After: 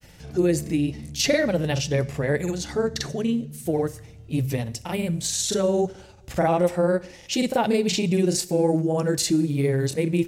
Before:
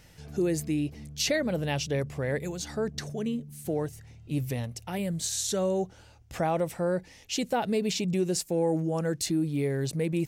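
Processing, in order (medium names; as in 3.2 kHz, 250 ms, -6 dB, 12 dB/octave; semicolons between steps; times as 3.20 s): granulator, spray 33 ms, pitch spread up and down by 0 st; two-slope reverb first 0.67 s, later 1.9 s, DRR 15.5 dB; trim +7 dB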